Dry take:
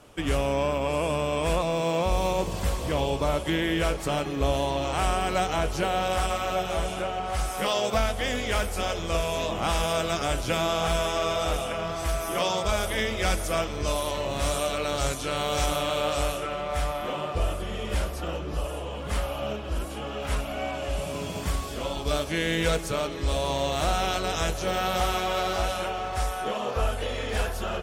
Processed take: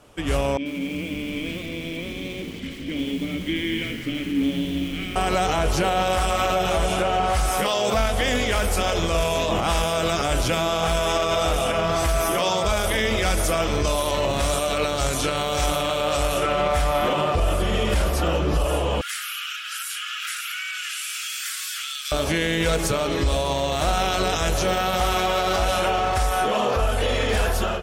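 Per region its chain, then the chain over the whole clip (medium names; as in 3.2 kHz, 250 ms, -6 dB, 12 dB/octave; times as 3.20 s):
0.57–5.16 s: vowel filter i + frequency-shifting echo 184 ms, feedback 59%, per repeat -100 Hz, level -10 dB + bit-crushed delay 84 ms, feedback 55%, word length 8-bit, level -9 dB
19.01–22.12 s: steep high-pass 1.3 kHz 96 dB/octave + treble shelf 5.7 kHz +6 dB + compression, threshold -38 dBFS
whole clip: level rider gain up to 12 dB; peak limiter -13 dBFS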